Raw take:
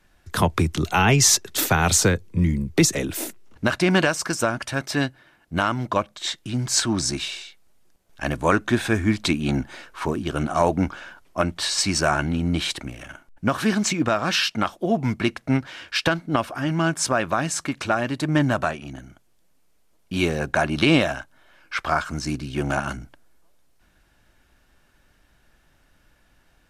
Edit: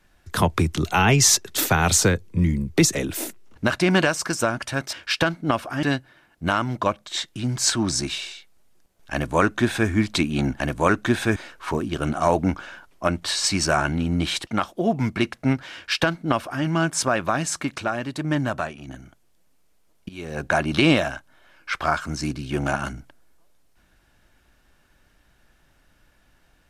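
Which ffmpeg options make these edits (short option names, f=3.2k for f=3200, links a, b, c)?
-filter_complex "[0:a]asplit=9[a][b][c][d][e][f][g][h][i];[a]atrim=end=4.932[j];[b]atrim=start=15.778:end=16.682[k];[c]atrim=start=4.928:end=9.702[l];[d]atrim=start=8.228:end=8.992[m];[e]atrim=start=9.698:end=12.812[n];[f]atrim=start=14.508:end=17.822[o];[g]atrim=start=17.818:end=18.922,asetpts=PTS-STARTPTS,volume=-3.5dB[p];[h]atrim=start=18.918:end=20.13,asetpts=PTS-STARTPTS,afade=t=out:st=1.208:d=0.004:c=hsin:silence=0.112202[q];[i]atrim=start=20.13,asetpts=PTS-STARTPTS,afade=t=in:d=0.36:c=qua:silence=0.112202[r];[j][k]acrossfade=d=0.004:c1=hsin:c2=hsin[s];[s][l]acrossfade=d=0.004:c1=hsin:c2=hsin[t];[t][m]acrossfade=d=0.004:c1=hsin:c2=hsin[u];[u][n]acrossfade=d=0.004:c1=hsin:c2=hsin[v];[v][o]acrossfade=d=0.004:c1=hsin:c2=hsin[w];[w][p]acrossfade=d=0.004:c1=hsin:c2=hsin[x];[q][r]concat=n=2:v=0:a=1[y];[x][y]acrossfade=d=0.004:c1=hsin:c2=hsin"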